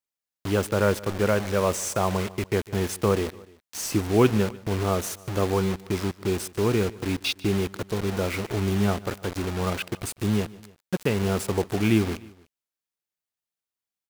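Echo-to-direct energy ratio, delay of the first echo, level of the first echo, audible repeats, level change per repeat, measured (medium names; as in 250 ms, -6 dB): -19.5 dB, 149 ms, -21.0 dB, 2, -4.5 dB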